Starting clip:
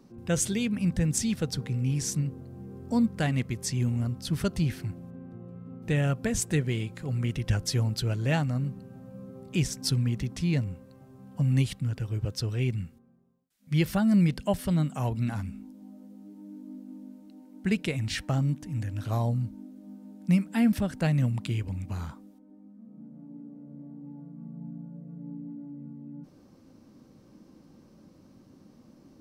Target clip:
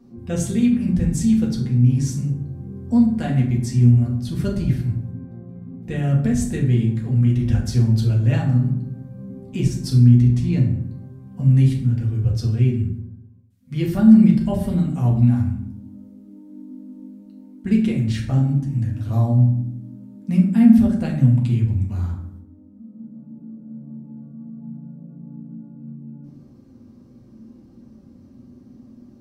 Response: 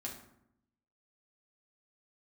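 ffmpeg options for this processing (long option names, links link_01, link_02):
-filter_complex "[0:a]lowshelf=frequency=330:gain=10.5[link_01];[1:a]atrim=start_sample=2205[link_02];[link_01][link_02]afir=irnorm=-1:irlink=0"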